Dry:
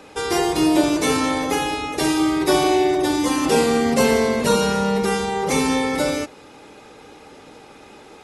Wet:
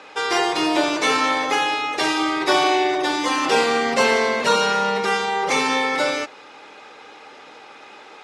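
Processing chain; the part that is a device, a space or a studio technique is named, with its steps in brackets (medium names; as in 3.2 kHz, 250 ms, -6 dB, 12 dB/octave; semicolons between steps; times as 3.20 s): filter by subtraction (in parallel: low-pass 1.3 kHz 12 dB/octave + polarity flip); on the sum: low-pass 5.2 kHz 12 dB/octave; trim +3.5 dB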